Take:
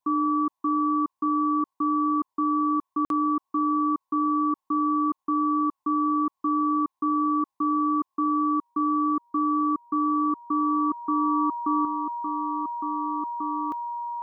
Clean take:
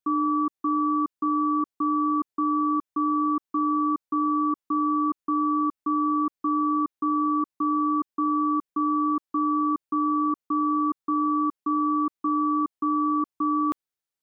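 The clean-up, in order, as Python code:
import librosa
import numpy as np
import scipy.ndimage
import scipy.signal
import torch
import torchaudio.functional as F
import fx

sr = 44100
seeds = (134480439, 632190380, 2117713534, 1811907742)

y = fx.notch(x, sr, hz=950.0, q=30.0)
y = fx.fix_interpolate(y, sr, at_s=(3.05,), length_ms=52.0)
y = fx.noise_reduce(y, sr, print_start_s=7.27, print_end_s=7.77, reduce_db=7.0)
y = fx.fix_level(y, sr, at_s=11.85, step_db=7.0)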